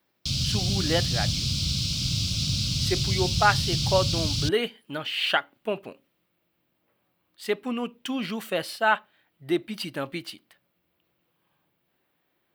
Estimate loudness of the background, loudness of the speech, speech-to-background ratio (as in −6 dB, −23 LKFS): −25.5 LKFS, −28.5 LKFS, −3.0 dB